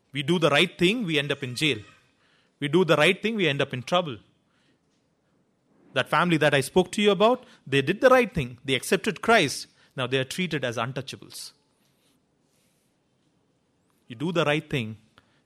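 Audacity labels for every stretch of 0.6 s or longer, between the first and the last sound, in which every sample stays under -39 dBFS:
1.820000	2.610000	silence
4.170000	5.950000	silence
11.490000	14.100000	silence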